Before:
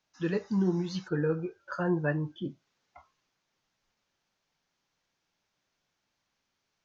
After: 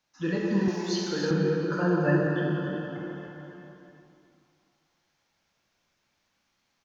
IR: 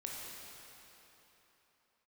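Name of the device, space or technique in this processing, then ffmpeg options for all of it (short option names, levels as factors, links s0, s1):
cave: -filter_complex "[0:a]aecho=1:1:289:0.335[s0];[1:a]atrim=start_sample=2205[s1];[s0][s1]afir=irnorm=-1:irlink=0,bandreject=f=410:w=12,asettb=1/sr,asplit=3[s2][s3][s4];[s2]atrim=end=0.684[s5];[s3]atrim=start=0.68:end=1.31,asetpts=PTS-STARTPTS,afade=t=in:d=0.004:c=qsin,afade=t=out:st=0.626:d=0.004:c=qsin,bass=f=250:g=-14,treble=f=4000:g=10[s6];[s4]atrim=start=1.306[s7];[s5][s6]acrossfade=d=0.004:c1=hsin:c2=qsin[s8];[s8][s7]acrossfade=d=0.004:c1=qsin:c2=hsin,asplit=2[s9][s10];[s10]adelay=438,lowpass=f=2000:p=1,volume=0.112,asplit=2[s11][s12];[s12]adelay=438,lowpass=f=2000:p=1,volume=0.37,asplit=2[s13][s14];[s14]adelay=438,lowpass=f=2000:p=1,volume=0.37[s15];[s9][s11][s13][s15]amix=inputs=4:normalize=0,volume=2"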